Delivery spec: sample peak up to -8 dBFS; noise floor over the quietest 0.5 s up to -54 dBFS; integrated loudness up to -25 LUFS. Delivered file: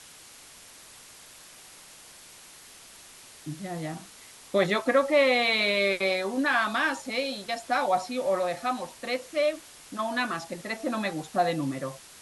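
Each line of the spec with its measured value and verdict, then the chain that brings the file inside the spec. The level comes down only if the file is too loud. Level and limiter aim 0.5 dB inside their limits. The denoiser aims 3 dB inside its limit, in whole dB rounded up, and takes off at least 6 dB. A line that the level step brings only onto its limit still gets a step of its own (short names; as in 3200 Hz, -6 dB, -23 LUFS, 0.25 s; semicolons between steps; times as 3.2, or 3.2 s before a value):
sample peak -10.5 dBFS: OK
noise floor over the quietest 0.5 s -50 dBFS: fail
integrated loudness -27.0 LUFS: OK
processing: denoiser 7 dB, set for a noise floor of -50 dBFS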